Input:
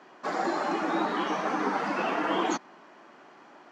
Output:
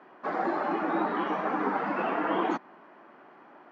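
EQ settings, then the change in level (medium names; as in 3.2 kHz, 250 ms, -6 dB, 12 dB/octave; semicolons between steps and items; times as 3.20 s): high-pass 100 Hz; low-pass 2.1 kHz 12 dB/octave; 0.0 dB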